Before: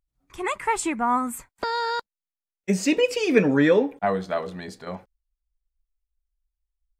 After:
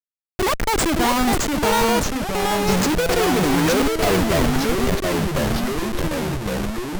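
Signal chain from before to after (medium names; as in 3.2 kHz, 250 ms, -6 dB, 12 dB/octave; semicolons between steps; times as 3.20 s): wow and flutter 23 cents; Schmitt trigger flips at -28.5 dBFS; ever faster or slower copies 519 ms, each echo -2 st, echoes 3; trim +7 dB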